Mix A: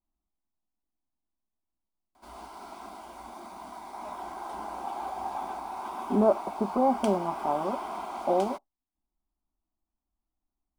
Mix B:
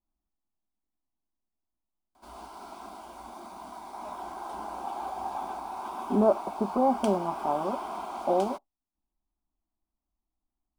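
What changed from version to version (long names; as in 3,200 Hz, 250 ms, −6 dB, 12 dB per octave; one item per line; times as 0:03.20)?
master: add parametric band 2,000 Hz −5.5 dB 0.32 octaves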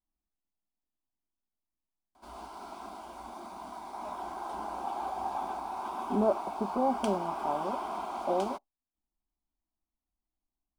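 speech −4.5 dB
background: add high-shelf EQ 9,000 Hz −5 dB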